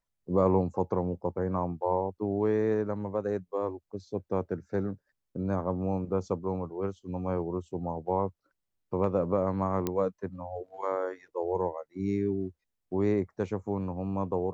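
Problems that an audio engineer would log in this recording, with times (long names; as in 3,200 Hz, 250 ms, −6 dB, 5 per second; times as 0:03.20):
0:09.87: click −15 dBFS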